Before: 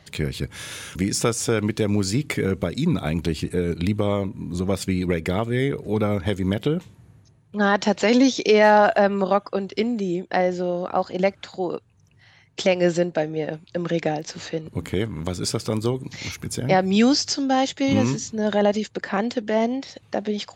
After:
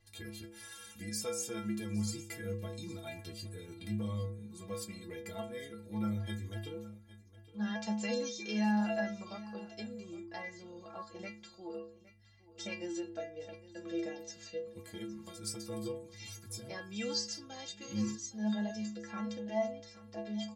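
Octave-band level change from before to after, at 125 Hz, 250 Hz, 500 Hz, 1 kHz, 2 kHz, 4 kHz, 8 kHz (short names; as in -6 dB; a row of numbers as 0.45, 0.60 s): -16.5, -15.0, -19.5, -21.5, -17.5, -14.5, -12.0 dB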